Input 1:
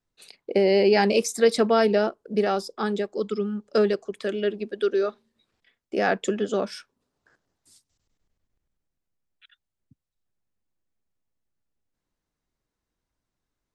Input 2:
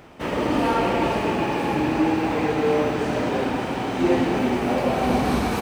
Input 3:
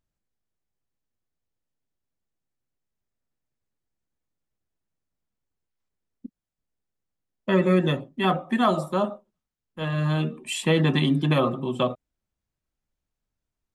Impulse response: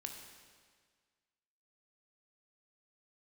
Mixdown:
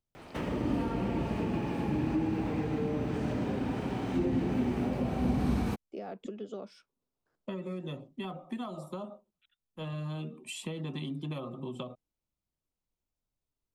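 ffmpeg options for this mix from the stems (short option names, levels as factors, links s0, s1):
-filter_complex "[0:a]deesser=1,lowpass=f=3600:p=1,volume=0.708[s0];[1:a]adelay=150,volume=0.75[s1];[2:a]volume=0.473,asplit=2[s2][s3];[s3]apad=whole_len=606359[s4];[s0][s4]sidechaingate=range=0.355:threshold=0.00794:ratio=16:detection=peak[s5];[s5][s2]amix=inputs=2:normalize=0,equalizer=f=1700:t=o:w=0.43:g=-11,acompressor=threshold=0.02:ratio=6,volume=1[s6];[s1][s6]amix=inputs=2:normalize=0,acrossover=split=260[s7][s8];[s8]acompressor=threshold=0.0141:ratio=10[s9];[s7][s9]amix=inputs=2:normalize=0"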